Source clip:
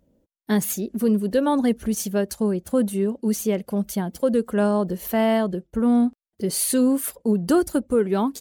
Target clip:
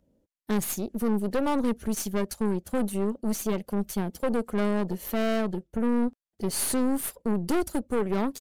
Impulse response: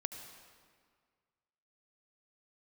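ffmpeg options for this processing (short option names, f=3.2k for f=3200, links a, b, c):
-filter_complex "[0:a]aeval=exprs='(tanh(12.6*val(0)+0.75)-tanh(0.75))/12.6':c=same,aresample=32000,aresample=44100,acrossover=split=640|3300[a][b][c];[c]acrusher=bits=3:mode=log:mix=0:aa=0.000001[d];[a][b][d]amix=inputs=3:normalize=0"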